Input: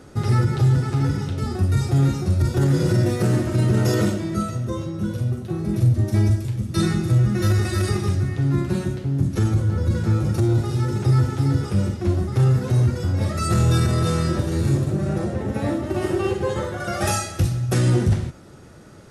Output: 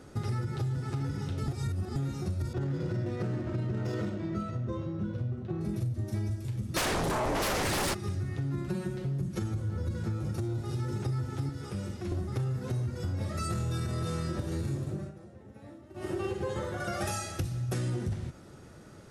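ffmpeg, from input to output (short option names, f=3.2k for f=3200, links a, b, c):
-filter_complex "[0:a]asettb=1/sr,asplit=3[a][b][c];[a]atrim=end=2.534[d];[b]atrim=start=2.53:end=5.61,asetpts=PTS-STARTPTS,afade=t=in:d=0.004:c=qsin,afade=t=out:st=3.076:d=0.004:c=qsin,adynamicsmooth=sensitivity=3:basefreq=2.6k[e];[c]atrim=start=5.606[f];[d][e]acrossfade=d=0.004:c1=hsin:c2=qsin[g];[g][f]acrossfade=d=0.004:c1=qsin:c2=hsin,asplit=3[h][i][j];[h]afade=t=out:st=6.76:d=0.02[k];[i]aeval=exprs='0.355*sin(PI/2*7.08*val(0)/0.355)':c=same,afade=t=in:st=6.76:d=0.02,afade=t=out:st=7.93:d=0.02[l];[j]afade=t=in:st=7.93:d=0.02[m];[k][l][m]amix=inputs=3:normalize=0,asettb=1/sr,asplit=3[n][o][p];[n]atrim=end=8.684[q];[o]atrim=start=8.68:end=9.42,asetpts=PTS-STARTPTS,afade=t=in:d=0.004:c=qsin,afade=t=out:st=0.736:d=0.004:c=qsin,aecho=1:1:5.5:0.65,atrim=end_sample=32634[r];[p]atrim=start=9.416[s];[q][r]acrossfade=d=0.004:c1=hsin:c2=qsin[t];[t][s]acrossfade=d=0.004:c1=qsin:c2=hsin,asettb=1/sr,asplit=3[u][v][w];[u]atrim=end=11.494[x];[v]atrim=start=11.49:end=12.12,asetpts=PTS-STARTPTS,afade=t=in:d=0.004:c=qsin,afade=t=out:st=0.626:d=0.004:c=qsin,acrossover=split=110|250|1400[y][z][aa][ab];[y]acompressor=threshold=-37dB:ratio=3[ac];[z]acompressor=threshold=-35dB:ratio=3[ad];[aa]acompressor=threshold=-37dB:ratio=3[ae];[ab]acompressor=threshold=-44dB:ratio=3[af];[ac][ad][ae][af]amix=inputs=4:normalize=0[ag];[w]atrim=start=12.116[ah];[x][ag]acrossfade=d=0.004:c1=hsin:c2=qsin[ai];[ai][ah]acrossfade=d=0.004:c1=qsin:c2=hsin,asplit=5[aj][ak][al][am][an];[aj]atrim=end=1.482[ao];[ak]atrim=start=1.478:end=1.962,asetpts=PTS-STARTPTS,areverse[ap];[al]atrim=start=1.958:end=15.12,asetpts=PTS-STARTPTS,afade=t=out:st=12.732:d=0.43:c=qsin:silence=0.1[aq];[am]atrim=start=15.12:end=15.94,asetpts=PTS-STARTPTS,volume=-20dB[ar];[an]atrim=start=15.94,asetpts=PTS-STARTPTS,afade=t=in:d=0.43:c=qsin:silence=0.1[as];[ao][ap]acrossfade=d=0.004:c1=hsin:c2=hsin[at];[aq][ar][as]concat=n=3:v=0:a=1[au];[at][au]acrossfade=d=0.004:c1=hsin:c2=hsin,acompressor=threshold=-24dB:ratio=6,volume=-5.5dB"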